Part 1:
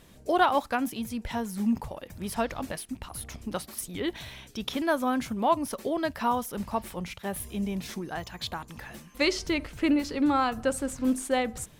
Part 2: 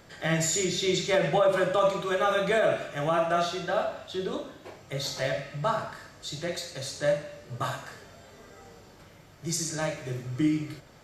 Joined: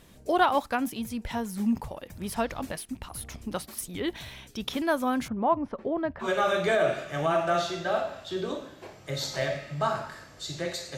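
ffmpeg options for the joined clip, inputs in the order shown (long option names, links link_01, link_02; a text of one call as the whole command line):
ffmpeg -i cue0.wav -i cue1.wav -filter_complex "[0:a]asettb=1/sr,asplit=3[link_01][link_02][link_03];[link_01]atrim=end=5.284[link_04];[link_02]atrim=start=5.28:end=6.29,asetpts=PTS-STARTPTS,afade=type=in:duration=0.004:curve=qsin,afade=type=out:start_time=1.006:duration=0.004:curve=qsin,lowpass=1500[link_05];[link_03]atrim=start=6.286[link_06];[link_04][link_05]acrossfade=duration=0.004:curve1=hsin:curve2=qsin[link_07];[link_07][link_06]acrossfade=duration=0.004:curve1=qsin:curve2=hsin,apad=whole_dur=10.97,atrim=end=10.97,atrim=end=6.29,asetpts=PTS-STARTPTS[link_08];[1:a]atrim=start=2.02:end=6.8,asetpts=PTS-STARTPTS[link_09];[link_08][link_09]acrossfade=duration=0.1:curve1=tri:curve2=tri" out.wav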